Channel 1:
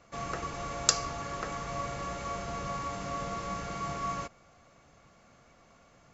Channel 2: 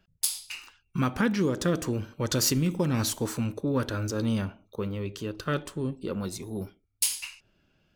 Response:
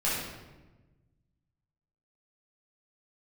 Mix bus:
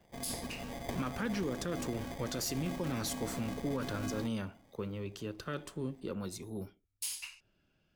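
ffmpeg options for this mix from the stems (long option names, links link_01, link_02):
-filter_complex "[0:a]acrusher=samples=32:mix=1:aa=0.000001,asoftclip=type=tanh:threshold=-13dB,volume=-5.5dB[link_01];[1:a]acrossover=split=200[link_02][link_03];[link_02]acompressor=threshold=-34dB:ratio=6[link_04];[link_04][link_03]amix=inputs=2:normalize=0,volume=-6.5dB[link_05];[link_01][link_05]amix=inputs=2:normalize=0,alimiter=level_in=2dB:limit=-24dB:level=0:latency=1:release=53,volume=-2dB"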